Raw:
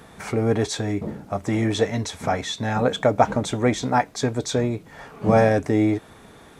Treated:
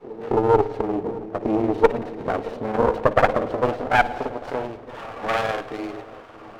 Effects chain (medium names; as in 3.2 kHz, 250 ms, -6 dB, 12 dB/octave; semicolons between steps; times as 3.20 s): CVSD coder 32 kbps; in parallel at -1.5 dB: compression, threshold -28 dBFS, peak gain reduction 15.5 dB; on the sum: granulator, spray 32 ms, pitch spread up and down by 0 st; pre-echo 266 ms -17 dB; band-pass sweep 430 Hz -> 1.2 kHz, 2.86–5.12 s; Chebyshev shaper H 4 -11 dB, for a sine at -9.5 dBFS; on a send: feedback echo behind a low-pass 624 ms, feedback 63%, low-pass 840 Hz, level -18 dB; on the sum: spring tank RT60 1.3 s, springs 55 ms, chirp 80 ms, DRR 13.5 dB; sliding maximum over 9 samples; trim +6 dB